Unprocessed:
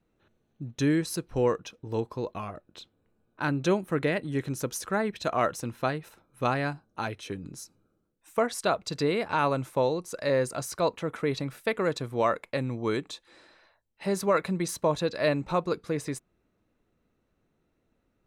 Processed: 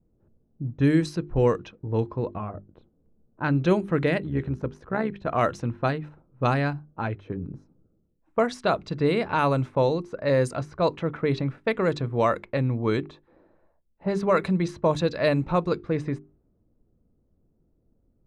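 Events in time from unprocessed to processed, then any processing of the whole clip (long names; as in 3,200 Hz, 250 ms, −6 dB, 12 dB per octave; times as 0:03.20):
0:04.22–0:05.32: amplitude modulation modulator 66 Hz, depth 40%
whole clip: mains-hum notches 50/100/150/200/250/300/350/400 Hz; low-pass that shuts in the quiet parts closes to 550 Hz, open at −21 dBFS; low-shelf EQ 180 Hz +10 dB; level +2 dB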